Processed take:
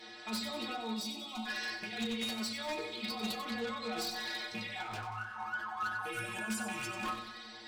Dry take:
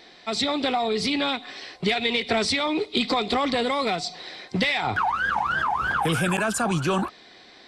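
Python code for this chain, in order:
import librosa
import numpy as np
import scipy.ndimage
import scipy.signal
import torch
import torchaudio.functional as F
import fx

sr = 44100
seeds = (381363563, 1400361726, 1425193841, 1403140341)

y = fx.rattle_buzz(x, sr, strikes_db=-27.0, level_db=-15.0)
y = fx.low_shelf(y, sr, hz=400.0, db=-7.0)
y = fx.over_compress(y, sr, threshold_db=-33.0, ratio=-1.0)
y = fx.stiff_resonator(y, sr, f0_hz=110.0, decay_s=0.45, stiffness=0.008)
y = 10.0 ** (-37.5 / 20.0) * (np.abs((y / 10.0 ** (-37.5 / 20.0) + 3.0) % 4.0 - 2.0) - 1.0)
y = fx.fixed_phaser(y, sr, hz=450.0, stages=6, at=(0.93, 1.45), fade=0.02)
y = fx.air_absorb(y, sr, metres=63.0, at=(3.44, 3.91))
y = fx.echo_feedback(y, sr, ms=93, feedback_pct=55, wet_db=-9.0)
y = fx.rev_fdn(y, sr, rt60_s=0.38, lf_ratio=1.5, hf_ratio=0.55, size_ms=28.0, drr_db=7.5)
y = fx.detune_double(y, sr, cents=fx.line((4.82, 57.0), (5.39, 40.0)), at=(4.82, 5.39), fade=0.02)
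y = y * librosa.db_to_amplitude(5.5)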